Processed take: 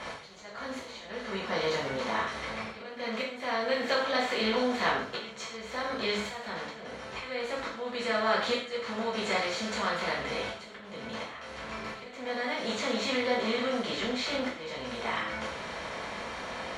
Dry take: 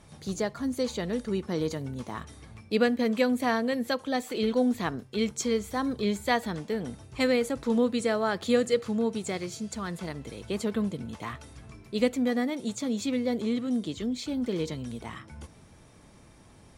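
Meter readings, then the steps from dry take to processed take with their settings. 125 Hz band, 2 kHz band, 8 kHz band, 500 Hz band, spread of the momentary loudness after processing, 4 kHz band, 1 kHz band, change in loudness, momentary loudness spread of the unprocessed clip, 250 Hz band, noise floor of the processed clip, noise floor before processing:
−8.5 dB, +4.0 dB, −4.5 dB, −3.0 dB, 12 LU, +4.0 dB, +2.5 dB, −3.0 dB, 13 LU, −9.0 dB, −45 dBFS, −54 dBFS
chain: compressor on every frequency bin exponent 0.6
volume swells 673 ms
three-way crossover with the lows and the highs turned down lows −14 dB, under 590 Hz, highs −21 dB, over 4,800 Hz
in parallel at +1.5 dB: downward compressor, threshold −42 dBFS, peak gain reduction 18 dB
on the sum: reverb whose tail is shaped and stops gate 180 ms falling, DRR −6 dB
level −6 dB

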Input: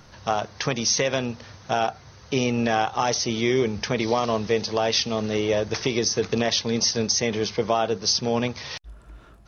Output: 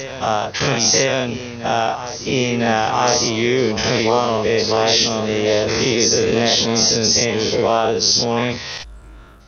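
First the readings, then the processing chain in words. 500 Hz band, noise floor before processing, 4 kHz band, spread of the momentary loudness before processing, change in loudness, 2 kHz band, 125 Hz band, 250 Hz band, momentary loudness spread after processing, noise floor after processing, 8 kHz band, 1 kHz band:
+7.0 dB, −49 dBFS, +8.5 dB, 6 LU, +7.0 dB, +7.5 dB, +6.0 dB, +5.5 dB, 8 LU, −38 dBFS, can't be measured, +6.5 dB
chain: every bin's largest magnitude spread in time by 120 ms
backwards echo 1,007 ms −12 dB
level +1.5 dB

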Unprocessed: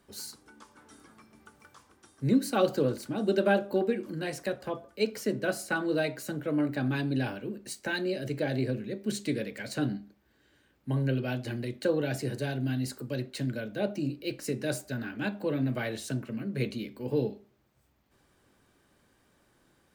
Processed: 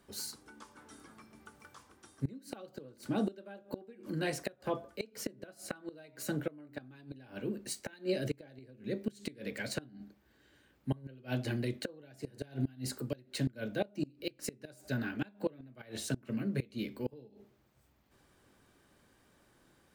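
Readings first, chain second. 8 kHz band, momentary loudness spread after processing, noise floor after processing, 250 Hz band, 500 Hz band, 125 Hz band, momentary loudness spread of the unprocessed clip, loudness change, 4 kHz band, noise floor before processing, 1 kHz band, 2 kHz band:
−3.0 dB, 18 LU, −68 dBFS, −7.5 dB, −9.5 dB, −7.0 dB, 9 LU, −8.0 dB, −5.0 dB, −68 dBFS, −10.0 dB, −9.0 dB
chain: gate with flip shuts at −22 dBFS, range −25 dB

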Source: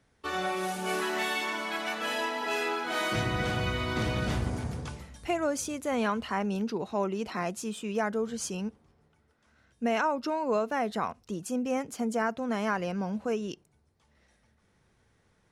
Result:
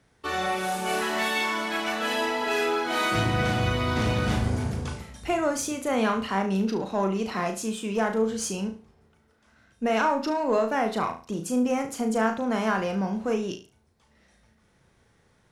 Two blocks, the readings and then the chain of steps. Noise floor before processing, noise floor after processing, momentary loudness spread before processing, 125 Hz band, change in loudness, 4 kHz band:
−69 dBFS, −64 dBFS, 6 LU, +5.5 dB, +4.5 dB, +4.0 dB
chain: in parallel at −5 dB: asymmetric clip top −33 dBFS
on the sum: flutter between parallel walls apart 6.2 metres, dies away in 0.34 s

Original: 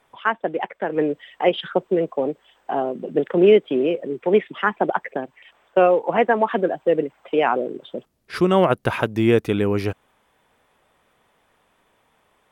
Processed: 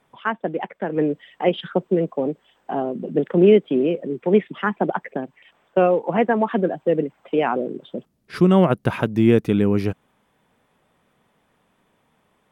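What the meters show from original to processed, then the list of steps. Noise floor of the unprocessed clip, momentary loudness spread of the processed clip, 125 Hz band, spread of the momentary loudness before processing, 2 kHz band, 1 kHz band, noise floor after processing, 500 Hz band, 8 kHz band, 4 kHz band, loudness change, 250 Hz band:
−64 dBFS, 13 LU, +4.5 dB, 13 LU, −3.5 dB, −2.5 dB, −66 dBFS, −1.0 dB, can't be measured, −3.5 dB, 0.0 dB, +3.0 dB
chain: parametric band 180 Hz +10 dB 1.6 octaves
level −3.5 dB

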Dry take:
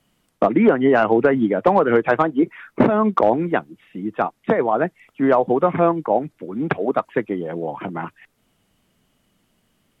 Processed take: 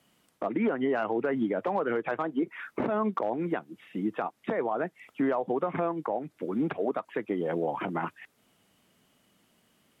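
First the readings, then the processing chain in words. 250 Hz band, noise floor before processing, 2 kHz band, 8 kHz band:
−10.5 dB, −67 dBFS, −11.0 dB, can't be measured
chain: high-pass filter 200 Hz 6 dB per octave
downward compressor 5 to 1, threshold −24 dBFS, peak gain reduction 13 dB
brickwall limiter −19 dBFS, peak gain reduction 9.5 dB

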